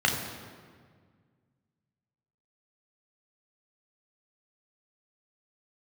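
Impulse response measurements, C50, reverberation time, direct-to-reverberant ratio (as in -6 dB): 5.0 dB, 1.8 s, 0.0 dB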